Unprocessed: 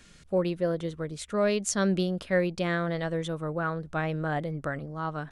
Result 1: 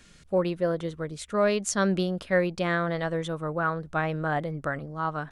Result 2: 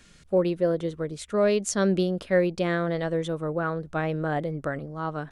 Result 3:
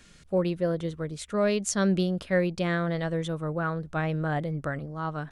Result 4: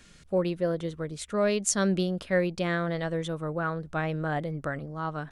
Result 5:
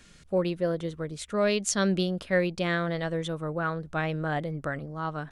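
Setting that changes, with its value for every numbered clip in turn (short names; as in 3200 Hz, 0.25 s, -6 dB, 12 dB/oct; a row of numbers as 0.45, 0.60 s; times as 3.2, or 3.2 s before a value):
dynamic EQ, frequency: 1100, 410, 100, 9100, 3400 Hz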